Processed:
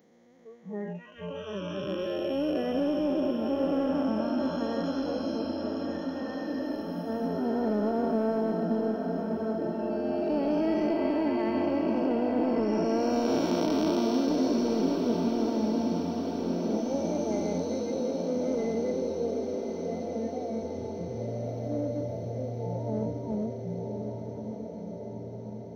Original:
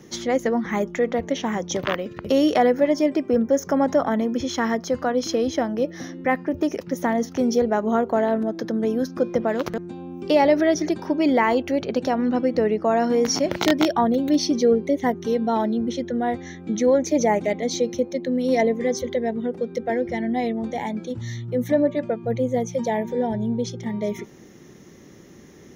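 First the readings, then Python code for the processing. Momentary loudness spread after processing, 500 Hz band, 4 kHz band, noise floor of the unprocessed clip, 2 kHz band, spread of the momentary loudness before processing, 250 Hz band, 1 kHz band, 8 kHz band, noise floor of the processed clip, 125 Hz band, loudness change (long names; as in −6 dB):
9 LU, −8.0 dB, −10.5 dB, −46 dBFS, −14.0 dB, 8 LU, −5.5 dB, −10.5 dB, −14.0 dB, −40 dBFS, −3.0 dB, −7.0 dB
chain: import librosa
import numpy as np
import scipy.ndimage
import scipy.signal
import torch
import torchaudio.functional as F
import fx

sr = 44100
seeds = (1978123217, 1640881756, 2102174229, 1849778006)

p1 = fx.spec_blur(x, sr, span_ms=1140.0)
p2 = scipy.signal.sosfilt(scipy.signal.butter(2, 45.0, 'highpass', fs=sr, output='sos'), p1)
p3 = fx.noise_reduce_blind(p2, sr, reduce_db=27)
p4 = np.clip(p3, -10.0 ** (-26.0 / 20.0), 10.0 ** (-26.0 / 20.0))
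p5 = p3 + F.gain(torch.from_numpy(p4), -8.0).numpy()
p6 = fx.echo_diffused(p5, sr, ms=1217, feedback_pct=66, wet_db=-5.5)
y = F.gain(torch.from_numpy(p6), -3.5).numpy()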